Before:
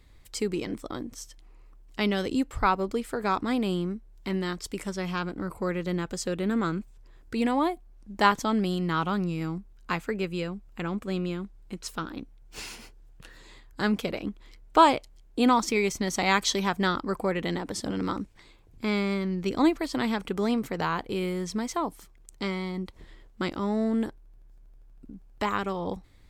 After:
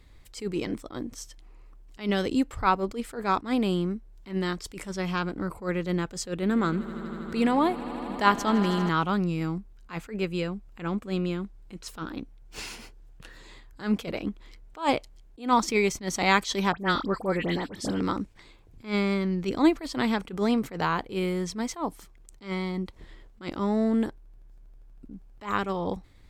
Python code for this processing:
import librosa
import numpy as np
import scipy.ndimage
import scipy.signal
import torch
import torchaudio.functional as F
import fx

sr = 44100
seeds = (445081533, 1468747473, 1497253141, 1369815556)

y = fx.echo_swell(x, sr, ms=80, loudest=5, wet_db=-18.0, at=(6.38, 8.89))
y = fx.dispersion(y, sr, late='highs', ms=66.0, hz=2000.0, at=(16.72, 18.0))
y = fx.high_shelf(y, sr, hz=7700.0, db=-3.5)
y = fx.attack_slew(y, sr, db_per_s=200.0)
y = y * librosa.db_to_amplitude(2.0)